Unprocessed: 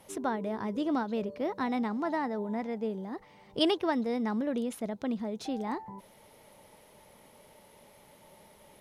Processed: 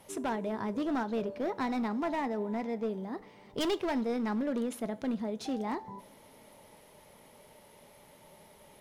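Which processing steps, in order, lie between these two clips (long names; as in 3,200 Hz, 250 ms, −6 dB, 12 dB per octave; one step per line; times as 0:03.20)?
hard clipping −27.5 dBFS, distortion −12 dB
on a send: convolution reverb, pre-delay 3 ms, DRR 13 dB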